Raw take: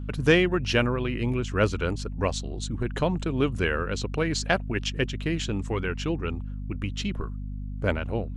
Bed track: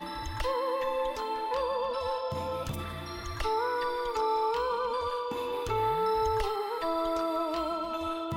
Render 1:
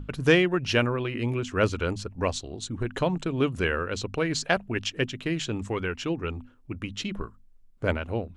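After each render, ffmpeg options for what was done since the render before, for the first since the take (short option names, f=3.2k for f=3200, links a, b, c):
-af "bandreject=f=50:t=h:w=6,bandreject=f=100:t=h:w=6,bandreject=f=150:t=h:w=6,bandreject=f=200:t=h:w=6,bandreject=f=250:t=h:w=6"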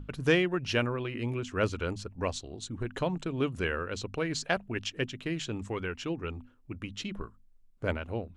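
-af "volume=-5dB"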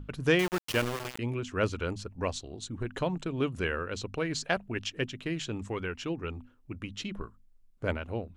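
-filter_complex "[0:a]asettb=1/sr,asplit=3[a][b][c];[a]atrim=end=0.394[d];[b]atrim=start=0.39:end=1.19,asetpts=PTS-STARTPTS,afade=t=in:d=0.004:c=qsin,afade=t=out:st=0.796:d=0.004:c=qsin,aeval=exprs='val(0)*gte(abs(val(0)),0.0335)':c=same[e];[c]atrim=start=1.186[f];[d][e]acrossfade=d=0.004:c1=hsin:c2=qsin[g];[g][f]acrossfade=d=0.004:c1=qsin:c2=hsin"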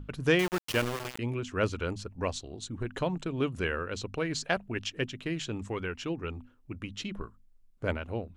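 -af anull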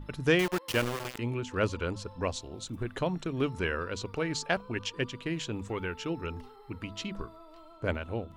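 -filter_complex "[1:a]volume=-21.5dB[a];[0:a][a]amix=inputs=2:normalize=0"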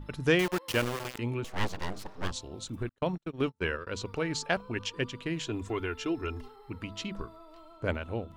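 -filter_complex "[0:a]asettb=1/sr,asplit=3[a][b][c];[a]atrim=end=1.444[d];[b]atrim=start=1.44:end=2.31,asetpts=PTS-STARTPTS,afade=t=in:d=0.004:c=qsin,afade=t=out:st=0.866:d=0.004:c=qsin,aeval=exprs='abs(val(0))':c=same[e];[c]atrim=start=2.306[f];[d][e]acrossfade=d=0.004:c1=hsin:c2=qsin[g];[g][f]acrossfade=d=0.004:c1=qsin:c2=hsin,asettb=1/sr,asplit=3[h][i][j];[h]atrim=end=2.894[k];[i]atrim=start=2.89:end=3.87,asetpts=PTS-STARTPTS,afade=t=in:d=0.004:c=qsin,afade=t=out:st=0.976:d=0.004:c=qsin,agate=range=-41dB:threshold=-33dB:ratio=16:release=100:detection=peak[l];[j]atrim=start=3.866[m];[k][l]acrossfade=d=0.004:c1=hsin:c2=qsin[n];[n][m]acrossfade=d=0.004:c1=qsin:c2=hsin,asettb=1/sr,asplit=3[o][p][q];[o]atrim=end=5.464[r];[p]atrim=start=5.46:end=6.48,asetpts=PTS-STARTPTS,afade=t=in:d=0.004:c=qsin,afade=t=out:st=1.016:d=0.004:c=qsin,aecho=1:1:2.9:0.65,atrim=end_sample=44982[s];[q]atrim=start=6.476[t];[r][s]acrossfade=d=0.004:c1=hsin:c2=qsin[u];[u][t]acrossfade=d=0.004:c1=qsin:c2=hsin"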